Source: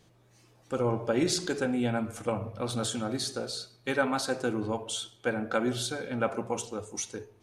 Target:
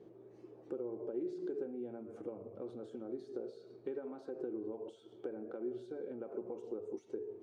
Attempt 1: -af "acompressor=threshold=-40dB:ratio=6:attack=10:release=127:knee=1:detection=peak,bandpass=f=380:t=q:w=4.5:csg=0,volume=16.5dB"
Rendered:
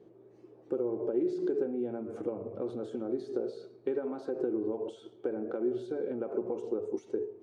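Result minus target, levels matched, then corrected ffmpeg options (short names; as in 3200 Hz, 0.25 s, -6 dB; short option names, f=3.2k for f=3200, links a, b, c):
compressor: peak gain reduction -9 dB
-af "acompressor=threshold=-51dB:ratio=6:attack=10:release=127:knee=1:detection=peak,bandpass=f=380:t=q:w=4.5:csg=0,volume=16.5dB"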